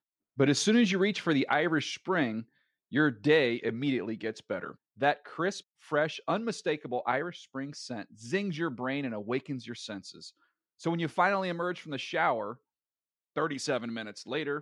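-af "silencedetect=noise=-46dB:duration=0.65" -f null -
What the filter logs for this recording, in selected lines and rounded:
silence_start: 12.55
silence_end: 13.36 | silence_duration: 0.81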